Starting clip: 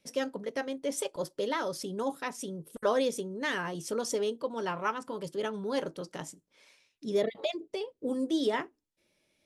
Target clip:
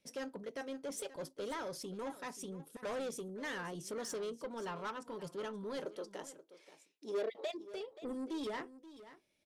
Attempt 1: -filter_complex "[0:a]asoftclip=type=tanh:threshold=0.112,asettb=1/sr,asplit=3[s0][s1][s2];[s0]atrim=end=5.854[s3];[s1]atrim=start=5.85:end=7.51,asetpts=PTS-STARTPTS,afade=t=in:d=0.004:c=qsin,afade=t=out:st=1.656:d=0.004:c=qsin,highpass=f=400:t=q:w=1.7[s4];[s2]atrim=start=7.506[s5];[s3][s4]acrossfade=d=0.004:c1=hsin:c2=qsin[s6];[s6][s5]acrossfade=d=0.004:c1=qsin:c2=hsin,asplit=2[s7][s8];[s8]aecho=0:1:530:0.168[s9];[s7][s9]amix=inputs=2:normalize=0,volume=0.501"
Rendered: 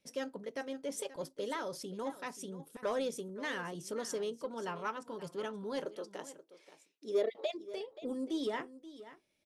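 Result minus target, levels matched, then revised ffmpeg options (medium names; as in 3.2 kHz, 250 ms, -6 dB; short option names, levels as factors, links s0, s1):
saturation: distortion -13 dB
-filter_complex "[0:a]asoftclip=type=tanh:threshold=0.0316,asettb=1/sr,asplit=3[s0][s1][s2];[s0]atrim=end=5.854[s3];[s1]atrim=start=5.85:end=7.51,asetpts=PTS-STARTPTS,afade=t=in:d=0.004:c=qsin,afade=t=out:st=1.656:d=0.004:c=qsin,highpass=f=400:t=q:w=1.7[s4];[s2]atrim=start=7.506[s5];[s3][s4]acrossfade=d=0.004:c1=hsin:c2=qsin[s6];[s6][s5]acrossfade=d=0.004:c1=qsin:c2=hsin,asplit=2[s7][s8];[s8]aecho=0:1:530:0.168[s9];[s7][s9]amix=inputs=2:normalize=0,volume=0.501"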